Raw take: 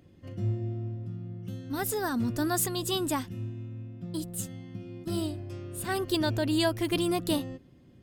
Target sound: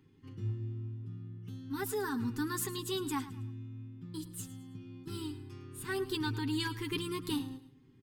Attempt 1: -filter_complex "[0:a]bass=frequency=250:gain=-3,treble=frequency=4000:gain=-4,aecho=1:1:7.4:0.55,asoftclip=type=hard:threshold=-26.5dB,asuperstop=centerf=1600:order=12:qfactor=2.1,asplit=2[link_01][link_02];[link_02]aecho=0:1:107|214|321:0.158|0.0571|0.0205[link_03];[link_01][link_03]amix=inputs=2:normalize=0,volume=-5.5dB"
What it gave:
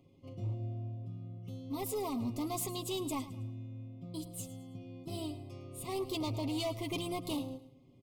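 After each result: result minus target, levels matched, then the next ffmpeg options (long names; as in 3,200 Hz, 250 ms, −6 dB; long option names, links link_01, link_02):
hard clipping: distortion +18 dB; 2,000 Hz band −8.0 dB
-filter_complex "[0:a]bass=frequency=250:gain=-3,treble=frequency=4000:gain=-4,aecho=1:1:7.4:0.55,asoftclip=type=hard:threshold=-18dB,asuperstop=centerf=1600:order=12:qfactor=2.1,asplit=2[link_01][link_02];[link_02]aecho=0:1:107|214|321:0.158|0.0571|0.0205[link_03];[link_01][link_03]amix=inputs=2:normalize=0,volume=-5.5dB"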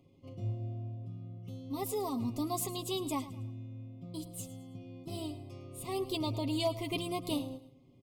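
2,000 Hz band −8.0 dB
-filter_complex "[0:a]bass=frequency=250:gain=-3,treble=frequency=4000:gain=-4,aecho=1:1:7.4:0.55,asoftclip=type=hard:threshold=-18dB,asuperstop=centerf=620:order=12:qfactor=2.1,asplit=2[link_01][link_02];[link_02]aecho=0:1:107|214|321:0.158|0.0571|0.0205[link_03];[link_01][link_03]amix=inputs=2:normalize=0,volume=-5.5dB"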